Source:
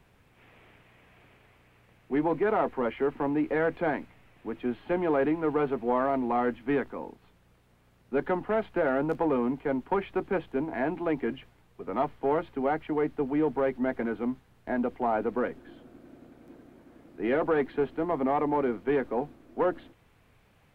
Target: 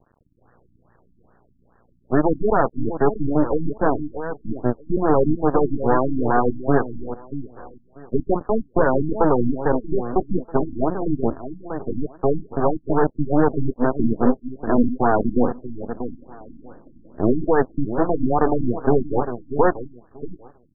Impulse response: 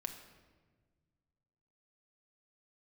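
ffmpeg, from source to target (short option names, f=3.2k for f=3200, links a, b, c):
-filter_complex "[0:a]asettb=1/sr,asplit=3[a][b][c];[a]atrim=end=13.984[d];[b]atrim=start=13.98:end=17.49,asetpts=PTS-STARTPTS,afade=t=in:d=0.004:c=qsin,afade=t=out:st=3.506:d=0.004:c=qsin,equalizer=f=210:t=o:w=1.2:g=5[e];[c]atrim=start=17.486[f];[d][e]acrossfade=d=0.004:c1=hsin:c2=qsin[g];[g][f]acrossfade=d=0.004:c1=qsin:c2=hsin,aeval=exprs='0.188*(cos(1*acos(clip(val(0)/0.188,-1,1)))-cos(1*PI/2))+0.00531*(cos(3*acos(clip(val(0)/0.188,-1,1)))-cos(3*PI/2))+0.0299*(cos(6*acos(clip(val(0)/0.188,-1,1)))-cos(6*PI/2))':c=same,acrusher=bits=7:dc=4:mix=0:aa=0.000001,aeval=exprs='0.224*(cos(1*acos(clip(val(0)/0.224,-1,1)))-cos(1*PI/2))+0.1*(cos(2*acos(clip(val(0)/0.224,-1,1)))-cos(2*PI/2))':c=same,aecho=1:1:638|1276|1914:0.316|0.0569|0.0102,afftfilt=real='re*lt(b*sr/1024,310*pow(1900/310,0.5+0.5*sin(2*PI*2.4*pts/sr)))':imag='im*lt(b*sr/1024,310*pow(1900/310,0.5+0.5*sin(2*PI*2.4*pts/sr)))':win_size=1024:overlap=0.75,volume=5.5dB"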